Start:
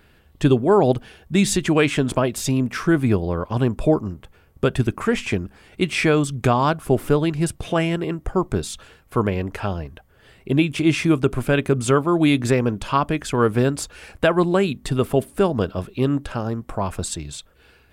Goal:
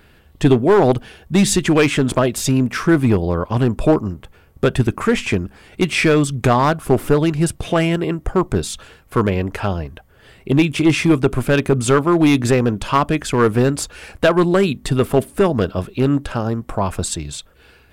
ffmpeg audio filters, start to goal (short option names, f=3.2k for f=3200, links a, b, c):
-af "aeval=exprs='clip(val(0),-1,0.237)':c=same,volume=4.5dB"